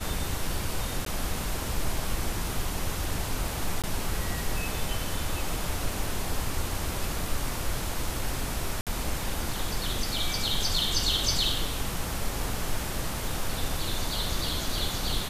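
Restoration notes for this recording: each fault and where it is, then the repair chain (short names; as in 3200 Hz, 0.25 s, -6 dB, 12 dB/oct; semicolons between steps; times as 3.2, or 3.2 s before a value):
1.05–1.06 gap 13 ms
3.82–3.84 gap 17 ms
8.81–8.87 gap 57 ms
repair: interpolate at 1.05, 13 ms; interpolate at 3.82, 17 ms; interpolate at 8.81, 57 ms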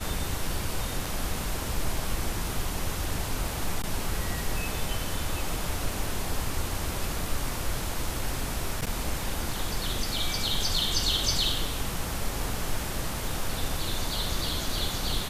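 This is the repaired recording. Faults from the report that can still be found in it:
none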